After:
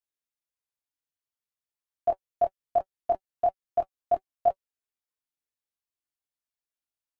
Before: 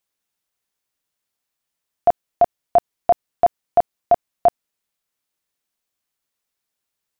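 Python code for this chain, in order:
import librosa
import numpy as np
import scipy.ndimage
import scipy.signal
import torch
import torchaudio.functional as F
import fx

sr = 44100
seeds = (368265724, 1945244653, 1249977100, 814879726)

y = fx.notch_comb(x, sr, f0_hz=190.0)
y = fx.level_steps(y, sr, step_db=13)
y = fx.chorus_voices(y, sr, voices=6, hz=0.43, base_ms=22, depth_ms=1.9, mix_pct=45)
y = y * 10.0 ** (-2.5 / 20.0)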